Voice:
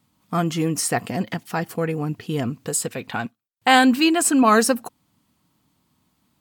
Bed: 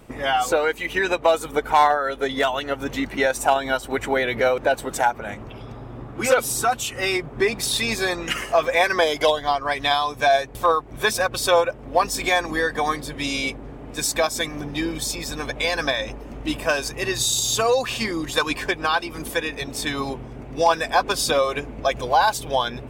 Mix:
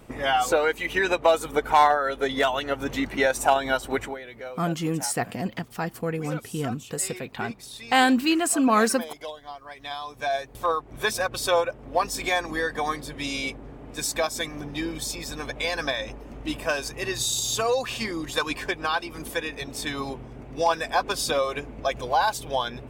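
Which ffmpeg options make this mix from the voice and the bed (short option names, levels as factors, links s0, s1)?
-filter_complex "[0:a]adelay=4250,volume=0.596[s0];[1:a]volume=3.98,afade=t=out:st=3.95:d=0.22:silence=0.149624,afade=t=in:st=9.75:d=1.18:silence=0.211349[s1];[s0][s1]amix=inputs=2:normalize=0"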